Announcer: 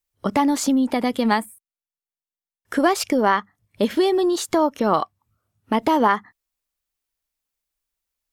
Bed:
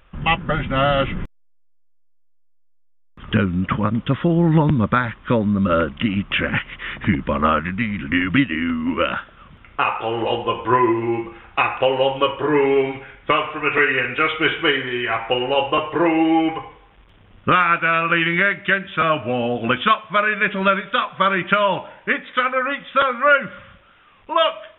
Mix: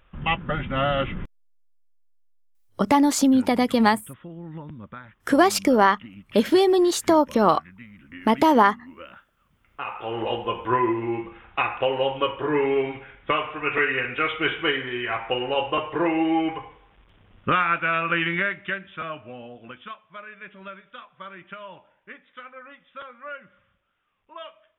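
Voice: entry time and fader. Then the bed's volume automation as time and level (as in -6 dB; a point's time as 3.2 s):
2.55 s, +1.0 dB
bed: 2.83 s -5.5 dB
3.11 s -22.5 dB
9.44 s -22.5 dB
10.16 s -5.5 dB
18.29 s -5.5 dB
19.73 s -22.5 dB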